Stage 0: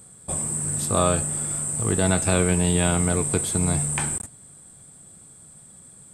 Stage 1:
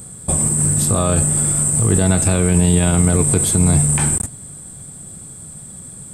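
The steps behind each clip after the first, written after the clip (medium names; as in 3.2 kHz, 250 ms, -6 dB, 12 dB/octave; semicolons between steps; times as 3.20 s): treble shelf 8.3 kHz +6.5 dB; peak limiter -17 dBFS, peak gain reduction 10.5 dB; bass shelf 320 Hz +8 dB; trim +8.5 dB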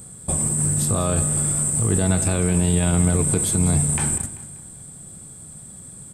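feedback delay 194 ms, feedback 40%, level -14.5 dB; trim -5 dB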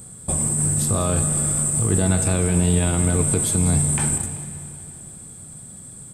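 plate-style reverb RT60 3.3 s, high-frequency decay 1×, DRR 10 dB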